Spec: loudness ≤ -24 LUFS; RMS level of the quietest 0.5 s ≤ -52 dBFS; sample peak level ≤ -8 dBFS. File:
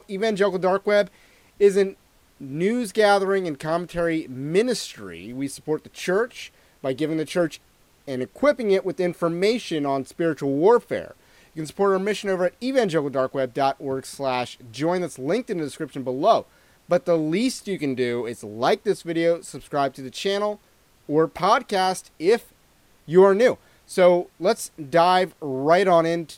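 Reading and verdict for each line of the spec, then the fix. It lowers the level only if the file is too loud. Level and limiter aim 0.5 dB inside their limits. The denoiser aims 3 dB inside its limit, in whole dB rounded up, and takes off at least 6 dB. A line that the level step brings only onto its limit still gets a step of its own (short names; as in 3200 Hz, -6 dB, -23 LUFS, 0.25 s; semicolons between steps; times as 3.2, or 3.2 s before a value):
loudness -22.5 LUFS: fail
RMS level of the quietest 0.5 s -58 dBFS: OK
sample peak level -4.5 dBFS: fail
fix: gain -2 dB; limiter -8.5 dBFS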